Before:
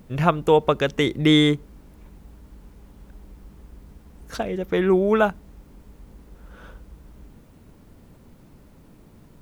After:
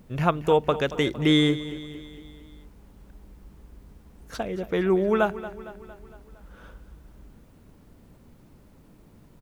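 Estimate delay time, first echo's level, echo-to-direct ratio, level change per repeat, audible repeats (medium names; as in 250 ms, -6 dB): 229 ms, -15.0 dB, -13.5 dB, -5.0 dB, 4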